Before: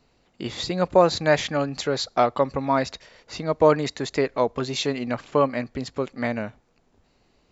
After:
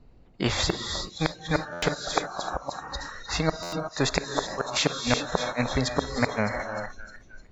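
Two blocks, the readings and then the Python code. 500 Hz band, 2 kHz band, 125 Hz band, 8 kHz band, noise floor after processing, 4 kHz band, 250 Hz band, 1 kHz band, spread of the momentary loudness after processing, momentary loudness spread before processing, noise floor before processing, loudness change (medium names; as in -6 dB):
-8.5 dB, +1.0 dB, 0.0 dB, no reading, -53 dBFS, +2.0 dB, -3.5 dB, -5.5 dB, 10 LU, 13 LU, -65 dBFS, -4.5 dB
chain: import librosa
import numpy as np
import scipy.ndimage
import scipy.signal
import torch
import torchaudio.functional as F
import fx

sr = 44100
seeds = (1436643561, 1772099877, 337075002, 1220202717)

y = fx.tilt_eq(x, sr, slope=-3.5)
y = fx.gate_flip(y, sr, shuts_db=-11.0, range_db=-42)
y = fx.spec_repair(y, sr, seeds[0], start_s=2.27, length_s=0.74, low_hz=1200.0, high_hz=3000.0, source='both')
y = fx.echo_thinned(y, sr, ms=305, feedback_pct=67, hz=1000.0, wet_db=-12.5)
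y = fx.rev_gated(y, sr, seeds[1], gate_ms=400, shape='rising', drr_db=7.5)
y = fx.noise_reduce_blind(y, sr, reduce_db=20)
y = fx.buffer_glitch(y, sr, at_s=(1.72, 3.62), block=512, repeats=8)
y = fx.spectral_comp(y, sr, ratio=2.0)
y = y * librosa.db_to_amplitude(7.0)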